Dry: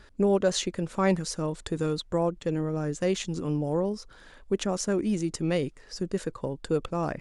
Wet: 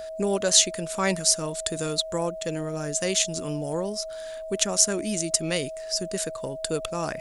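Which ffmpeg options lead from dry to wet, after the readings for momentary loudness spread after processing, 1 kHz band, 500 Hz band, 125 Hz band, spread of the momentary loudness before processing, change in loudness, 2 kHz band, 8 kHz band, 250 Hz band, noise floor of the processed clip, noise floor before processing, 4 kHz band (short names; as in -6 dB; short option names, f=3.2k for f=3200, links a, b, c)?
11 LU, +0.5 dB, 0.0 dB, -3.5 dB, 7 LU, +3.5 dB, +5.0 dB, +15.0 dB, -3.0 dB, -36 dBFS, -53 dBFS, +11.0 dB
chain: -af "crystalizer=i=8.5:c=0,aeval=exprs='val(0)+0.0316*sin(2*PI*640*n/s)':c=same,volume=-3.5dB"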